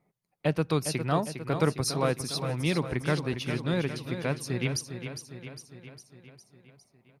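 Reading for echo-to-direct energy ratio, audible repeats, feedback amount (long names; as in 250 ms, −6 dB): −7.0 dB, 6, 58%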